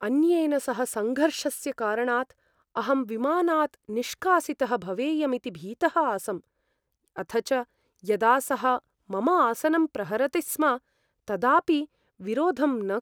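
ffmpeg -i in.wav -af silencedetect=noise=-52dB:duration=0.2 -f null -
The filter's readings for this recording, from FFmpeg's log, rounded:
silence_start: 2.32
silence_end: 2.75 | silence_duration: 0.44
silence_start: 6.40
silence_end: 7.08 | silence_duration: 0.68
silence_start: 7.64
silence_end: 7.99 | silence_duration: 0.35
silence_start: 8.79
silence_end: 9.09 | silence_duration: 0.30
silence_start: 10.79
silence_end: 11.28 | silence_duration: 0.49
silence_start: 11.86
silence_end: 12.20 | silence_duration: 0.34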